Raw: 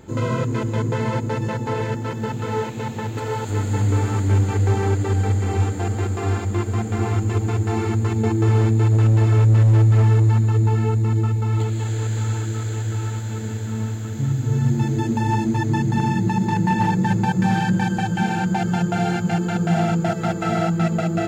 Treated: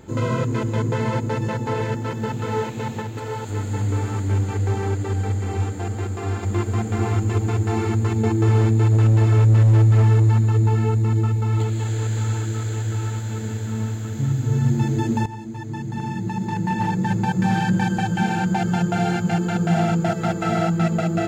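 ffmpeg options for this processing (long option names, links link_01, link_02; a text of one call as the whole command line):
ffmpeg -i in.wav -filter_complex "[0:a]asplit=4[link_01][link_02][link_03][link_04];[link_01]atrim=end=3.022[link_05];[link_02]atrim=start=3.018:end=6.432,asetpts=PTS-STARTPTS,volume=-3.5dB[link_06];[link_03]atrim=start=6.428:end=15.26,asetpts=PTS-STARTPTS,afade=type=out:start_time=8.828:duration=0.004:curve=hsin:silence=0.16788[link_07];[link_04]atrim=start=15.26,asetpts=PTS-STARTPTS,afade=type=in:duration=2.54:silence=0.16788[link_08];[link_05][link_06]acrossfade=duration=0.004:curve1=hsin:curve2=hsin[link_09];[link_07][link_08]concat=n=2:v=0:a=1[link_10];[link_09][link_10]acrossfade=duration=0.004:curve1=hsin:curve2=hsin" out.wav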